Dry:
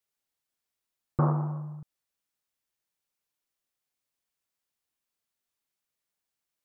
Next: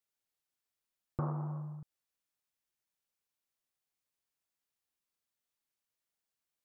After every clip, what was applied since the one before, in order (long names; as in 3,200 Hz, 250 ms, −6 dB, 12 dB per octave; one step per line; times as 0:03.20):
downward compressor 2.5 to 1, threshold −31 dBFS, peak gain reduction 7.5 dB
level −4 dB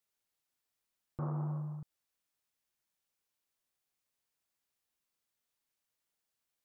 dynamic equaliser 1,000 Hz, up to −3 dB, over −53 dBFS, Q 0.93
brickwall limiter −32 dBFS, peak gain reduction 9 dB
level +2.5 dB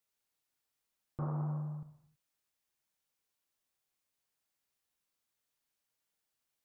reverb whose tail is shaped and stops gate 340 ms falling, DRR 9 dB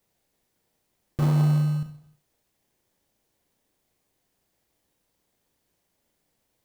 in parallel at −3 dB: sample-rate reduction 1,400 Hz, jitter 0%
on the sum: flutter between parallel walls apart 5.8 metres, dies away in 0.21 s
level +8.5 dB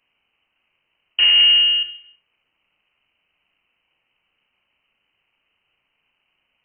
voice inversion scrambler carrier 3,000 Hz
level +7 dB